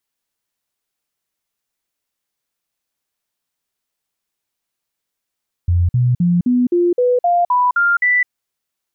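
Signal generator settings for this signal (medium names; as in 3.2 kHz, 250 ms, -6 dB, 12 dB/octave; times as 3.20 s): stepped sine 87.4 Hz up, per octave 2, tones 10, 0.21 s, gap 0.05 s -11 dBFS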